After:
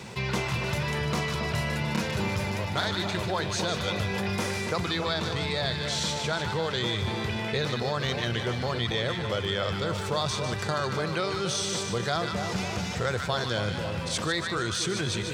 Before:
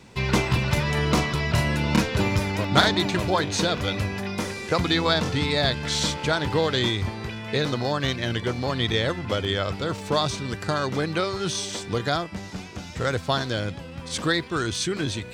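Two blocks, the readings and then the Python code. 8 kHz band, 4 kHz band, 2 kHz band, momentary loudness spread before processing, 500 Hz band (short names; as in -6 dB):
-1.5 dB, -3.5 dB, -3.5 dB, 7 LU, -4.0 dB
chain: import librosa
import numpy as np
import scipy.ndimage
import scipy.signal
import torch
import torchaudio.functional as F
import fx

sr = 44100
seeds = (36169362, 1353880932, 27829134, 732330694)

y = scipy.signal.sosfilt(scipy.signal.butter(2, 82.0, 'highpass', fs=sr, output='sos'), x)
y = fx.peak_eq(y, sr, hz=280.0, db=-12.5, octaves=0.26)
y = fx.rider(y, sr, range_db=10, speed_s=0.5)
y = fx.echo_split(y, sr, split_hz=1100.0, low_ms=277, high_ms=150, feedback_pct=52, wet_db=-8.5)
y = fx.env_flatten(y, sr, amount_pct=50)
y = y * librosa.db_to_amplitude(-7.0)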